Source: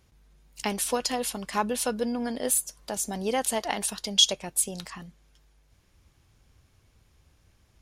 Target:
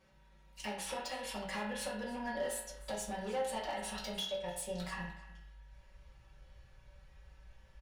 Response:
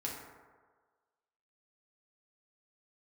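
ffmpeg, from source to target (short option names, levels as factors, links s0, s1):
-filter_complex "[0:a]lowpass=f=2500:p=1,lowshelf=f=220:g=-11,aecho=1:1:5.3:0.64,asubboost=boost=11.5:cutoff=69,acompressor=threshold=0.0141:ratio=12,asoftclip=type=hard:threshold=0.0158,aecho=1:1:301:0.112[s0];[1:a]atrim=start_sample=2205,asetrate=88200,aresample=44100[s1];[s0][s1]afir=irnorm=-1:irlink=0,volume=2.24"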